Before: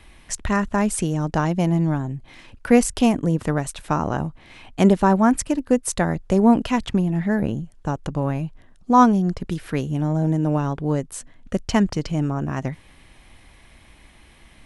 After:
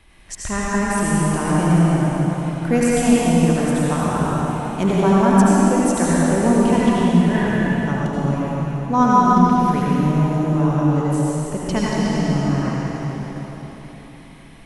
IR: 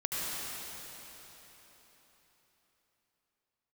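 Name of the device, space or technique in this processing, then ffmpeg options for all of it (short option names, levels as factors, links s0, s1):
cathedral: -filter_complex "[1:a]atrim=start_sample=2205[s0];[0:a][s0]afir=irnorm=-1:irlink=0,asettb=1/sr,asplit=3[s1][s2][s3];[s1]atrim=end=7.344[s4];[s2]atrim=start=7.34:end=8.06,asetpts=PTS-STARTPTS,afade=t=in:d=0.004:c=qsin,afade=t=out:st=0.716:d=0.004:c=qsin,equalizer=f=1700:w=1.2:g=6[s5];[s3]atrim=start=8.056[s6];[s4][s5]acrossfade=d=0.004:c1=hsin:c2=qsin[s7];[s7][s6]acrossfade=d=0.004:c1=qsin:c2=hsin,volume=0.668"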